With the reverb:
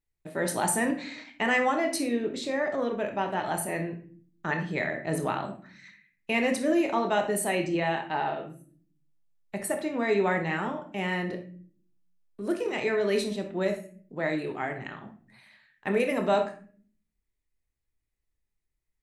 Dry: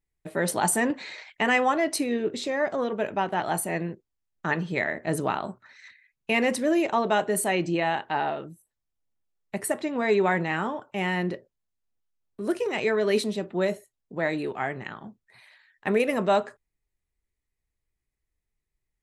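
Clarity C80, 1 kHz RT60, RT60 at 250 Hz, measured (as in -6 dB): 13.5 dB, 0.35 s, 0.90 s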